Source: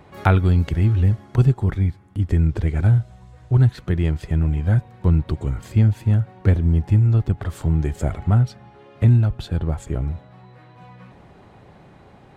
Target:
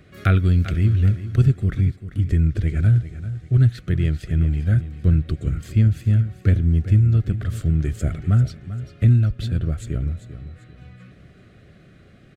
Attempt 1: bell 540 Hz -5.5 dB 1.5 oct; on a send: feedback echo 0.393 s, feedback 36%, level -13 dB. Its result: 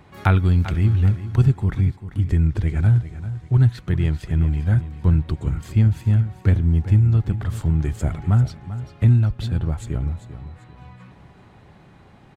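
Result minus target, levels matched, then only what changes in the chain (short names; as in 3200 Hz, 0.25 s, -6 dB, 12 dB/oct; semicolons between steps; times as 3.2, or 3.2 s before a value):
1000 Hz band +5.0 dB
add first: Butterworth band-stop 910 Hz, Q 1.6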